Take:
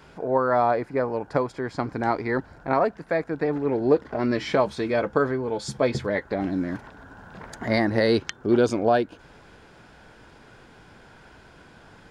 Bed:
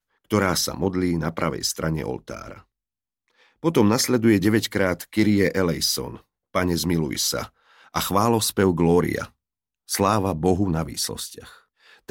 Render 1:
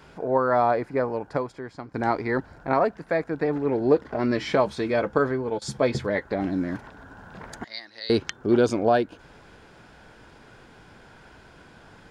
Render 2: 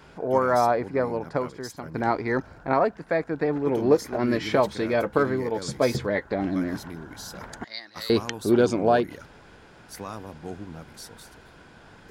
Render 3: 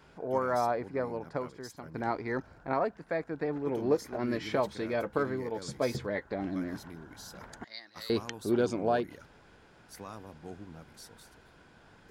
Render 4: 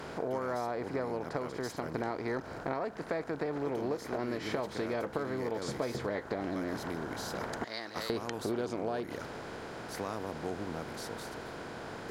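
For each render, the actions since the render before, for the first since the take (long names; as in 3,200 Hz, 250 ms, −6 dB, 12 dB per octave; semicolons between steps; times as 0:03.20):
0:01.03–0:01.94: fade out, to −15 dB; 0:05.18–0:05.62: noise gate −30 dBFS, range −17 dB; 0:07.64–0:08.10: resonant band-pass 4,200 Hz, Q 2.9
mix in bed −17 dB
level −8 dB
compressor on every frequency bin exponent 0.6; downward compressor, threshold −31 dBFS, peak gain reduction 11 dB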